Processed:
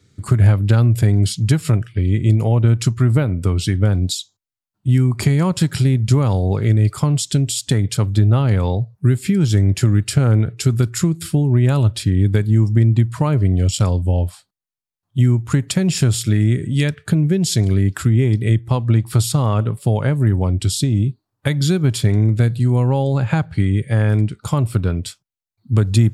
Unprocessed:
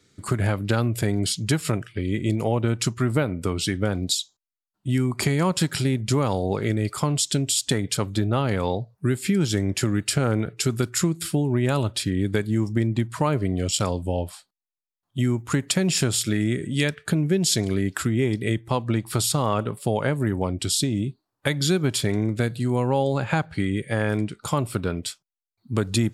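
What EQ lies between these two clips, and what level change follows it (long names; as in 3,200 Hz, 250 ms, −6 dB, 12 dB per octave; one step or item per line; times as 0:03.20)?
parametric band 97 Hz +13 dB 1.7 octaves
0.0 dB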